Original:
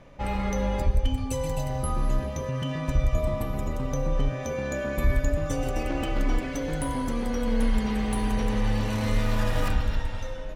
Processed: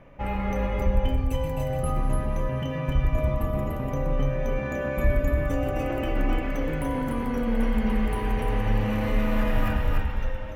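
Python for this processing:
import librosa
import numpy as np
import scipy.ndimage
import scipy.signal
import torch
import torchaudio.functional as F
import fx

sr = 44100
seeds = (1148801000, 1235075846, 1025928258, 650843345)

p1 = fx.band_shelf(x, sr, hz=5900.0, db=-12.5, octaves=1.7)
y = p1 + fx.echo_single(p1, sr, ms=293, db=-4.0, dry=0)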